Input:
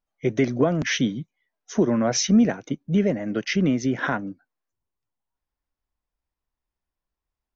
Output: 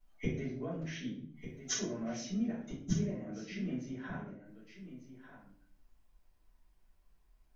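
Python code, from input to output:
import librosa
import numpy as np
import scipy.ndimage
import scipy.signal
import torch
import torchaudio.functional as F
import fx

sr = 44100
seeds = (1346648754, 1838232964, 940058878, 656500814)

y = fx.gate_flip(x, sr, shuts_db=-27.0, range_db=-30)
y = y + 10.0 ** (-11.5 / 20.0) * np.pad(y, (int(1196 * sr / 1000.0), 0))[:len(y)]
y = fx.room_shoebox(y, sr, seeds[0], volume_m3=58.0, walls='mixed', distance_m=3.0)
y = y * librosa.db_to_amplitude(-3.0)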